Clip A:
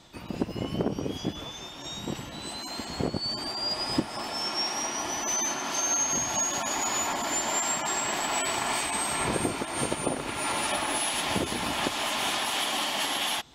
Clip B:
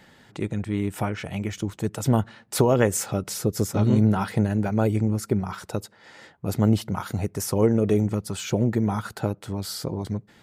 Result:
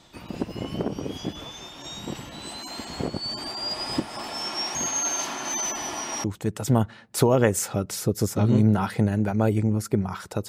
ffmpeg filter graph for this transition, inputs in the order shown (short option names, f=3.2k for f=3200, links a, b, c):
-filter_complex "[0:a]apad=whole_dur=10.48,atrim=end=10.48,asplit=2[a][b];[a]atrim=end=4.752[c];[b]atrim=start=4.748:end=6.242,asetpts=PTS-STARTPTS,areverse[d];[1:a]atrim=start=1.618:end=5.86[e];[c][d]acrossfade=d=0.004:c1=hsin:c2=hsin[f];[f][e]acrossfade=d=0.004:c1=hsin:c2=hsin"